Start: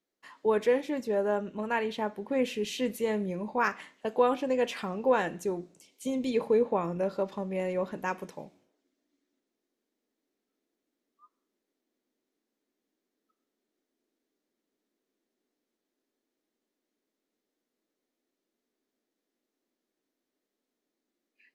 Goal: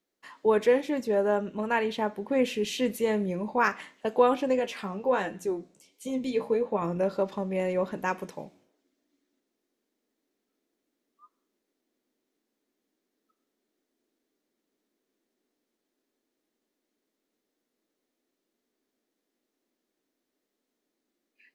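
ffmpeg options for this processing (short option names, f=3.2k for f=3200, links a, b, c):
-filter_complex "[0:a]asettb=1/sr,asplit=3[a][b][c];[a]atrim=end=4.594[d];[b]atrim=start=4.59:end=6.82,asetpts=PTS-STARTPTS,afade=t=in:d=0.004:c=qsin,afade=t=out:st=2.226:d=0.004:c=qsin,flanger=delay=9.5:depth=6.2:regen=33:speed=1.4:shape=sinusoidal[e];[c]atrim=start=6.816[f];[d][e]acrossfade=d=0.004:c1=hsin:c2=qsin[g];[g][f]acrossfade=d=0.004:c1=qsin:c2=hsin,volume=3dB"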